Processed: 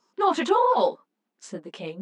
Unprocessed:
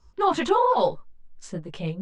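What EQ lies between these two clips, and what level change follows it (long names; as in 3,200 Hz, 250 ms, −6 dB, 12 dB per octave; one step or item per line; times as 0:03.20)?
linear-phase brick-wall high-pass 180 Hz
0.0 dB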